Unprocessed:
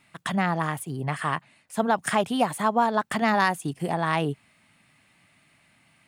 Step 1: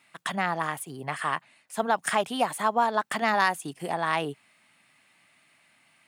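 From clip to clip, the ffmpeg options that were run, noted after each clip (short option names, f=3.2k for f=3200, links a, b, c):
-af "highpass=f=480:p=1"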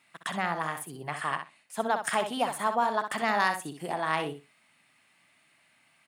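-af "aecho=1:1:63|126|189:0.398|0.0637|0.0102,volume=-3dB"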